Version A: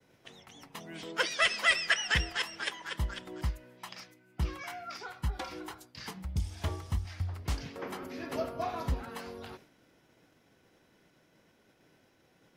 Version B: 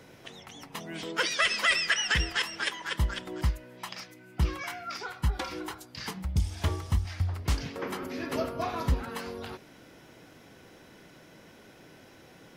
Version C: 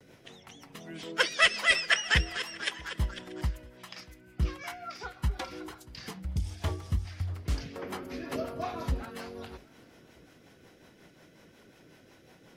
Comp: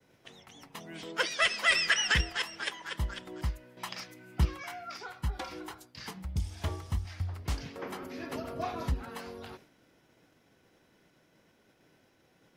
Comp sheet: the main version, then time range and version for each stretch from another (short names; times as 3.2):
A
1.72–2.21 from B
3.77–4.45 from B
8.42–8.96 from C, crossfade 0.16 s